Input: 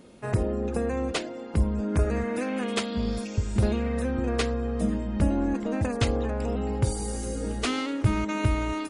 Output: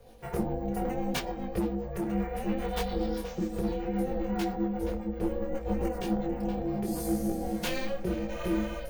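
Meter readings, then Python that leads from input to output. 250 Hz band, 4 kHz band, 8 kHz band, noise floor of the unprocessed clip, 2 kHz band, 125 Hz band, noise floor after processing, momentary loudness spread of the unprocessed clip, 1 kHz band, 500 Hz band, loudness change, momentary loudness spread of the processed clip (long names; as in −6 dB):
−2.5 dB, −6.0 dB, −6.5 dB, −37 dBFS, −6.5 dB, −9.5 dB, −39 dBFS, 4 LU, −2.0 dB, −2.5 dB, −4.5 dB, 3 LU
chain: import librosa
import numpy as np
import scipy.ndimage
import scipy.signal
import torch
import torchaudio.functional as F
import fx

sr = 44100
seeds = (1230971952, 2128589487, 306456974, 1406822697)

y = fx.low_shelf(x, sr, hz=90.0, db=11.5)
y = fx.notch(y, sr, hz=7500.0, q=6.2)
y = y + 0.84 * np.pad(y, (int(4.3 * sr / 1000.0), 0))[:len(y)]
y = fx.echo_filtered(y, sr, ms=472, feedback_pct=54, hz=2000.0, wet_db=-7.5)
y = np.repeat(y[::2], 2)[:len(y)]
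y = fx.rider(y, sr, range_db=4, speed_s=0.5)
y = scipy.signal.sosfilt(scipy.signal.butter(4, 54.0, 'highpass', fs=sr, output='sos'), y)
y = fx.rotary_switch(y, sr, hz=7.5, then_hz=1.2, switch_at_s=6.24)
y = y * np.sin(2.0 * np.pi * 270.0 * np.arange(len(y)) / sr)
y = np.clip(y, -10.0 ** (-14.0 / 20.0), 10.0 ** (-14.0 / 20.0))
y = fx.high_shelf(y, sr, hz=7100.0, db=7.5)
y = fx.detune_double(y, sr, cents=24)
y = y * 10.0 ** (-2.5 / 20.0)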